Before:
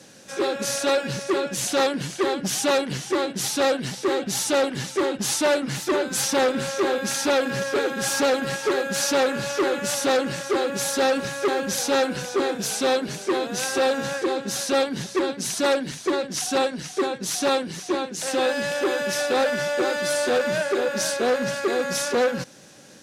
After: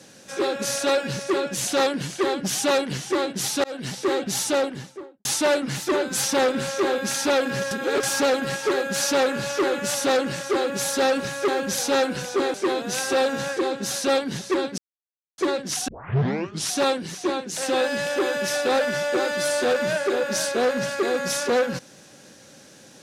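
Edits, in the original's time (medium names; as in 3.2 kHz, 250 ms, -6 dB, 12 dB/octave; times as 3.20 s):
3.64–3.90 s: fade in
4.40–5.25 s: studio fade out
7.71–8.03 s: reverse
12.54–13.19 s: delete
15.43–16.03 s: mute
16.53 s: tape start 0.83 s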